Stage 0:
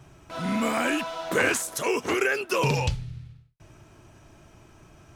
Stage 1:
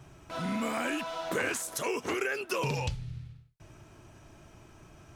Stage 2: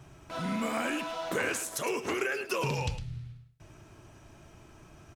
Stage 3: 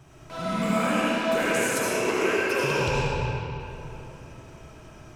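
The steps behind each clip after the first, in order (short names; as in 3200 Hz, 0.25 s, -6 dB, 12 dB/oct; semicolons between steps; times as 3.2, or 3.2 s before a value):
compressor 2:1, threshold -31 dBFS, peak gain reduction 7.5 dB; gain -1.5 dB
echo 0.108 s -11.5 dB
reverb RT60 3.2 s, pre-delay 35 ms, DRR -7 dB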